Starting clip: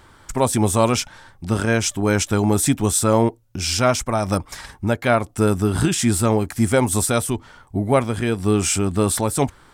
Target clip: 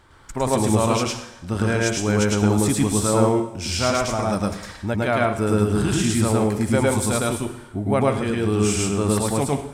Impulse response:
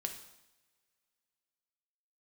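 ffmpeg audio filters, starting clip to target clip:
-filter_complex "[0:a]highshelf=frequency=10000:gain=-6,asplit=2[link_01][link_02];[1:a]atrim=start_sample=2205,highshelf=frequency=12000:gain=-4.5,adelay=107[link_03];[link_02][link_03]afir=irnorm=-1:irlink=0,volume=2dB[link_04];[link_01][link_04]amix=inputs=2:normalize=0,volume=-5dB"

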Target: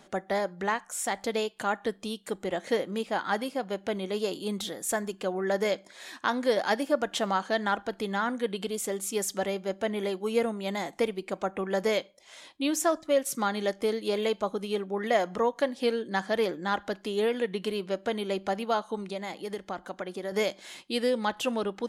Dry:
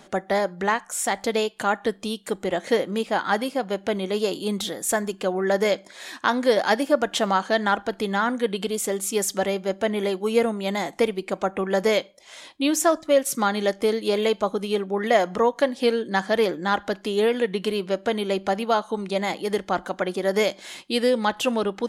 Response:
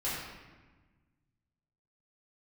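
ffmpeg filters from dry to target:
-filter_complex "[0:a]asettb=1/sr,asplit=3[link_01][link_02][link_03];[link_01]atrim=end=19.024[link_04];[link_02]atrim=start=19.02:end=20.32,asetpts=PTS-STARTPTS,afade=type=in:duration=0.004:curve=qsin,afade=type=out:start_time=1.296:duration=0.004:curve=qsin,acompressor=threshold=-28dB:ratio=2.5[link_05];[link_03]atrim=start=20.316[link_06];[link_04][link_05]acrossfade=duration=0.004:curve1=hsin:curve2=qsin[link_07];[link_07][link_06]acrossfade=duration=0.004:curve1=qsin:curve2=hsin,volume=-6dB"

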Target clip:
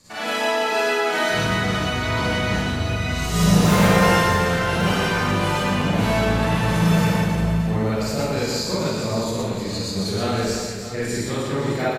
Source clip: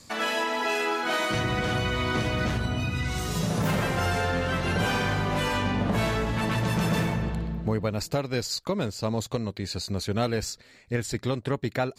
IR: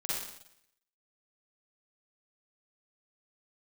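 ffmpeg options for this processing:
-filter_complex "[0:a]asettb=1/sr,asplit=3[link_01][link_02][link_03];[link_01]atrim=end=3.294[link_04];[link_02]atrim=start=3.29:end=4.16,asetpts=PTS-STARTPTS,afade=type=in:duration=0.004:curve=qsin,afade=type=out:start_time=0.866:duration=0.004:curve=qsin,acontrast=21[link_05];[link_03]atrim=start=4.156[link_06];[link_04][link_05]acrossfade=duration=0.004:curve1=hsin:curve2=qsin[link_07];[link_07][link_06]acrossfade=duration=0.004:curve1=qsin:curve2=hsin,aecho=1:1:120|312|619.2|1111|1897:0.631|0.398|0.251|0.158|0.1[link_08];[1:a]atrim=start_sample=2205,asetrate=48510,aresample=44100[link_09];[link_08][link_09]afir=irnorm=-1:irlink=0"

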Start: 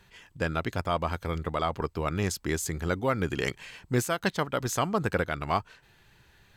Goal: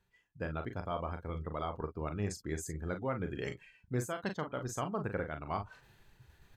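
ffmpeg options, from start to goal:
ffmpeg -i in.wav -af "afftdn=noise_reduction=19:noise_floor=-40,equalizer=frequency=2900:width_type=o:width=2.2:gain=-4.5,areverse,acompressor=mode=upward:threshold=-32dB:ratio=2.5,areverse,aecho=1:1:39|49:0.422|0.141,volume=-8.5dB" out.wav

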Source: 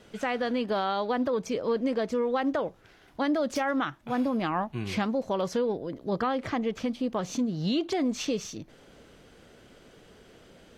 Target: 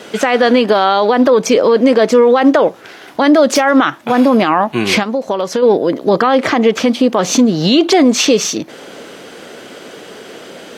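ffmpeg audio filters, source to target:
ffmpeg -i in.wav -filter_complex "[0:a]highpass=270,asplit=3[link_01][link_02][link_03];[link_01]afade=type=out:start_time=5.02:duration=0.02[link_04];[link_02]acompressor=threshold=-37dB:ratio=5,afade=type=in:start_time=5.02:duration=0.02,afade=type=out:start_time=5.62:duration=0.02[link_05];[link_03]afade=type=in:start_time=5.62:duration=0.02[link_06];[link_04][link_05][link_06]amix=inputs=3:normalize=0,alimiter=level_in=23.5dB:limit=-1dB:release=50:level=0:latency=1,volume=-1dB" out.wav

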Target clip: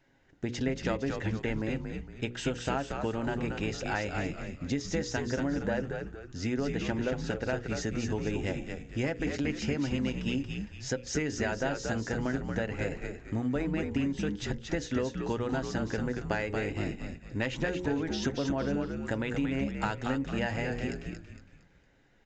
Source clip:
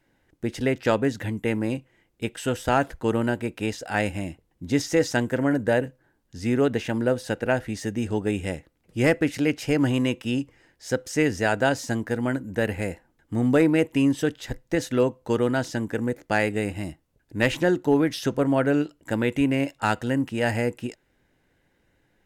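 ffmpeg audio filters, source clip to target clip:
ffmpeg -i in.wav -filter_complex "[0:a]bandreject=frequency=60:width_type=h:width=6,bandreject=frequency=120:width_type=h:width=6,bandreject=frequency=180:width_type=h:width=6,bandreject=frequency=240:width_type=h:width=6,bandreject=frequency=300:width_type=h:width=6,bandreject=frequency=360:width_type=h:width=6,bandreject=frequency=420:width_type=h:width=6,bandreject=frequency=480:width_type=h:width=6,bandreject=frequency=540:width_type=h:width=6,aecho=1:1:7.4:0.31,acompressor=threshold=-29dB:ratio=6,asplit=2[link_01][link_02];[link_02]asplit=5[link_03][link_04][link_05][link_06][link_07];[link_03]adelay=230,afreqshift=-73,volume=-5dB[link_08];[link_04]adelay=460,afreqshift=-146,volume=-13.6dB[link_09];[link_05]adelay=690,afreqshift=-219,volume=-22.3dB[link_10];[link_06]adelay=920,afreqshift=-292,volume=-30.9dB[link_11];[link_07]adelay=1150,afreqshift=-365,volume=-39.5dB[link_12];[link_08][link_09][link_10][link_11][link_12]amix=inputs=5:normalize=0[link_13];[link_01][link_13]amix=inputs=2:normalize=0,aresample=16000,aresample=44100" out.wav

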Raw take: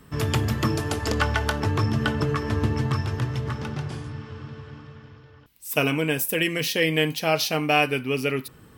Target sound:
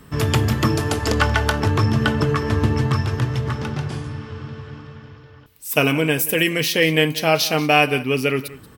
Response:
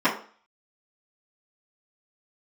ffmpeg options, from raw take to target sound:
-af "aecho=1:1:182:0.126,volume=5dB"

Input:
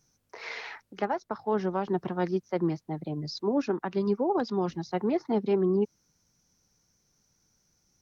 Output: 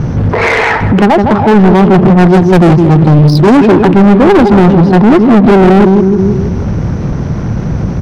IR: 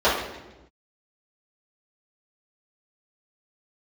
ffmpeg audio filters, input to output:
-filter_complex "[0:a]aeval=exprs='val(0)+0.5*0.00596*sgn(val(0))':channel_layout=same,equalizer=frequency=99:width=0.37:gain=11.5,asplit=2[link_01][link_02];[link_02]adelay=161,lowpass=frequency=2500:poles=1,volume=-9.5dB,asplit=2[link_03][link_04];[link_04]adelay=161,lowpass=frequency=2500:poles=1,volume=0.43,asplit=2[link_05][link_06];[link_06]adelay=161,lowpass=frequency=2500:poles=1,volume=0.43,asplit=2[link_07][link_08];[link_08]adelay=161,lowpass=frequency=2500:poles=1,volume=0.43,asplit=2[link_09][link_10];[link_10]adelay=161,lowpass=frequency=2500:poles=1,volume=0.43[link_11];[link_01][link_03][link_05][link_07][link_09][link_11]amix=inputs=6:normalize=0,asoftclip=type=hard:threshold=-26.5dB,adynamicsmooth=sensitivity=3.5:basefreq=1400,aeval=exprs='0.0473*(cos(1*acos(clip(val(0)/0.0473,-1,1)))-cos(1*PI/2))+0.00299*(cos(5*acos(clip(val(0)/0.0473,-1,1)))-cos(5*PI/2))':channel_layout=same,asetnsamples=nb_out_samples=441:pad=0,asendcmd='2.3 highshelf g 5.5;3.57 highshelf g -6',highshelf=frequency=5000:gain=-7,alimiter=level_in=32.5dB:limit=-1dB:release=50:level=0:latency=1,volume=-1dB"

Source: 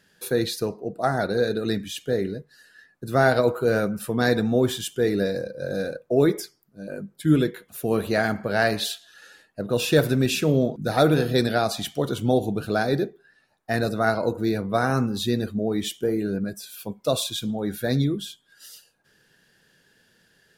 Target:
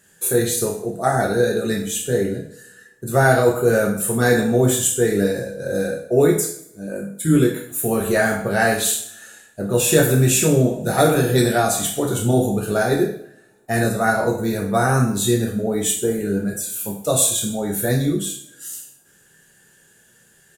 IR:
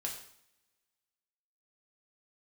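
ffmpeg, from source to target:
-filter_complex "[0:a]highshelf=frequency=6000:width_type=q:width=3:gain=7.5,asplit=2[link_01][link_02];[link_02]adelay=31,volume=-11.5dB[link_03];[link_01][link_03]amix=inputs=2:normalize=0[link_04];[1:a]atrim=start_sample=2205,asetrate=48510,aresample=44100[link_05];[link_04][link_05]afir=irnorm=-1:irlink=0,volume=5dB"

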